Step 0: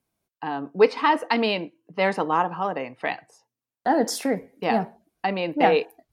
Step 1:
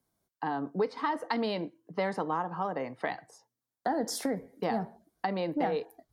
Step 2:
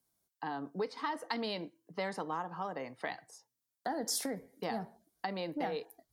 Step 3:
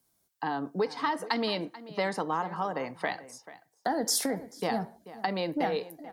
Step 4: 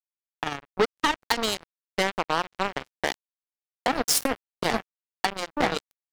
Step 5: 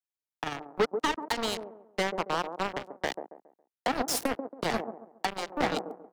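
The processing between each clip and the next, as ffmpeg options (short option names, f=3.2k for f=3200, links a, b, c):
-filter_complex "[0:a]equalizer=f=2.6k:w=3.9:g=-12.5,acrossover=split=130[a][b];[b]acompressor=threshold=-29dB:ratio=4[c];[a][c]amix=inputs=2:normalize=0"
-af "highshelf=f=2.8k:g=10.5,volume=-7dB"
-filter_complex "[0:a]asplit=2[a][b];[b]adelay=437.3,volume=-16dB,highshelf=f=4k:g=-9.84[c];[a][c]amix=inputs=2:normalize=0,volume=7dB"
-af "acrusher=bits=3:mix=0:aa=0.5,volume=5.5dB"
-filter_complex "[0:a]acrossover=split=200|900[a][b][c];[b]aecho=1:1:138|276|414|552:0.596|0.185|0.0572|0.0177[d];[c]asoftclip=type=tanh:threshold=-19.5dB[e];[a][d][e]amix=inputs=3:normalize=0,volume=-3.5dB"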